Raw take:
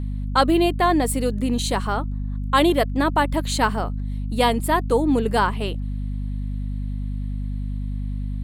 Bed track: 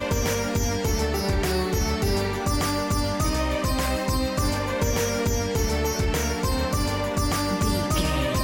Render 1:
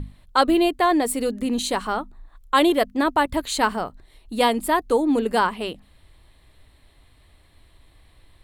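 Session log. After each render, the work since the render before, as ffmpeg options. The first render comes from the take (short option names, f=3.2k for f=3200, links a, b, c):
-af "bandreject=f=50:t=h:w=6,bandreject=f=100:t=h:w=6,bandreject=f=150:t=h:w=6,bandreject=f=200:t=h:w=6,bandreject=f=250:t=h:w=6"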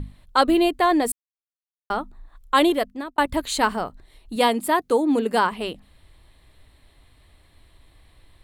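-filter_complex "[0:a]asettb=1/sr,asplit=3[a][b][c];[a]atrim=end=4.364[d];[b]atrim=start=4.36:end=5.52,asetpts=PTS-STARTPTS,afade=t=in:d=0.004:c=qsin,afade=t=out:st=1.156:d=0.004:c=qsin,highpass=120[e];[c]atrim=start=5.516[f];[d][e]acrossfade=d=0.004:c1=hsin:c2=qsin[g];[g][f]acrossfade=d=0.004:c1=qsin:c2=hsin,asplit=4[h][i][j][k];[h]atrim=end=1.12,asetpts=PTS-STARTPTS,afade=t=out:st=1.116:d=0.004:c=hsin[l];[i]atrim=start=1.12:end=1.9,asetpts=PTS-STARTPTS,volume=0[m];[j]atrim=start=1.9:end=3.18,asetpts=PTS-STARTPTS,afade=t=in:d=0.004:c=hsin,afade=t=out:st=0.73:d=0.55[n];[k]atrim=start=3.18,asetpts=PTS-STARTPTS,afade=t=in:d=0.004:c=hsin[o];[l][m][n][o]concat=n=4:v=0:a=1"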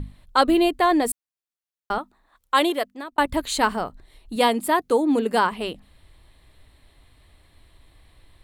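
-filter_complex "[0:a]asettb=1/sr,asplit=3[a][b][c];[a]atrim=end=1.984[d];[b]atrim=start=1.98:end=3.12,asetpts=PTS-STARTPTS,afade=t=in:d=0.004:c=qsin,afade=t=out:st=1.136:d=0.004:c=qsin,highpass=f=440:p=1[e];[c]atrim=start=3.116[f];[d][e]acrossfade=d=0.004:c1=hsin:c2=qsin[g];[g][f]acrossfade=d=0.004:c1=qsin:c2=hsin"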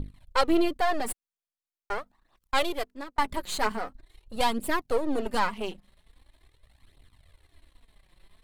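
-af "aeval=exprs='if(lt(val(0),0),0.251*val(0),val(0))':c=same,flanger=delay=0.2:depth=5.5:regen=5:speed=0.43:shape=triangular"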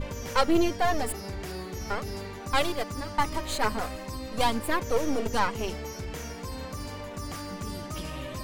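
-filter_complex "[1:a]volume=-12.5dB[a];[0:a][a]amix=inputs=2:normalize=0"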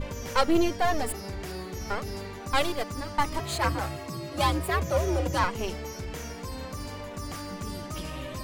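-filter_complex "[0:a]asettb=1/sr,asplit=3[a][b][c];[a]atrim=end=3.394[d];[b]atrim=start=3.39:end=5.44,asetpts=PTS-STARTPTS,afade=t=in:d=0.004:c=qsin,afade=t=out:st=2.046:d=0.004:c=qsin,afreqshift=77[e];[c]atrim=start=5.436[f];[d][e]acrossfade=d=0.004:c1=hsin:c2=qsin[g];[g][f]acrossfade=d=0.004:c1=qsin:c2=hsin"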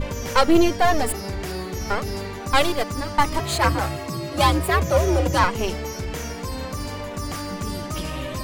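-af "volume=7dB,alimiter=limit=-2dB:level=0:latency=1"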